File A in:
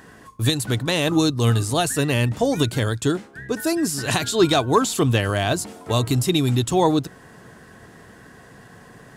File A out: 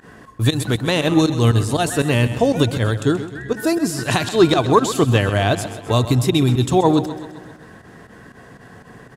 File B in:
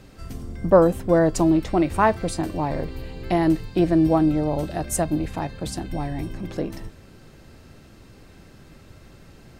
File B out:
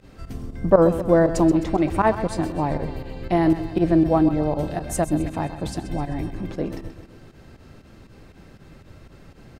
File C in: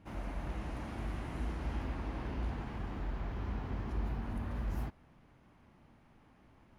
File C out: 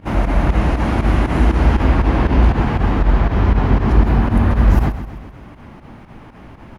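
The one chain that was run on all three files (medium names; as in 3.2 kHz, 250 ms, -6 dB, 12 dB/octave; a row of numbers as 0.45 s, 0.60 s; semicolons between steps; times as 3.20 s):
treble shelf 4.1 kHz -7 dB; volume shaper 119 bpm, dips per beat 2, -17 dB, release 74 ms; feedback delay 130 ms, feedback 54%, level -12.5 dB; peak normalisation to -1.5 dBFS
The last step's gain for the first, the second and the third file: +4.0 dB, +1.5 dB, +24.5 dB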